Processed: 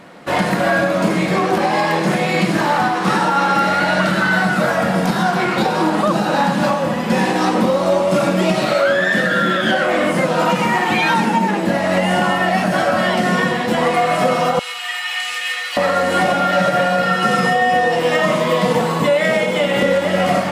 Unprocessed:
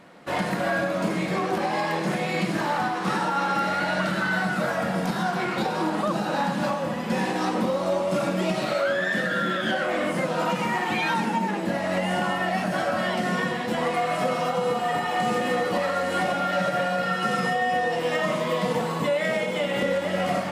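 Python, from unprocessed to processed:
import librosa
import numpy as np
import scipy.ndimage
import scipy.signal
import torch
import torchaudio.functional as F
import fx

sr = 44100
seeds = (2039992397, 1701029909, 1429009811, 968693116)

y = fx.highpass_res(x, sr, hz=2400.0, q=1.6, at=(14.59, 15.77))
y = F.gain(torch.from_numpy(y), 9.0).numpy()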